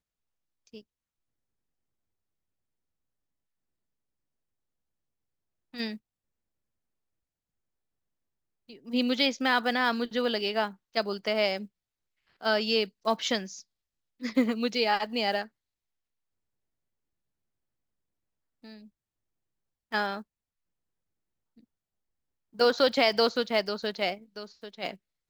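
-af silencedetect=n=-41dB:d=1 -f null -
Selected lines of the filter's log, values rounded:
silence_start: 0.80
silence_end: 5.74 | silence_duration: 4.94
silence_start: 5.97
silence_end: 8.69 | silence_duration: 2.73
silence_start: 15.46
silence_end: 18.64 | silence_duration: 3.18
silence_start: 18.77
silence_end: 19.92 | silence_duration: 1.15
silence_start: 20.22
silence_end: 22.59 | silence_duration: 2.38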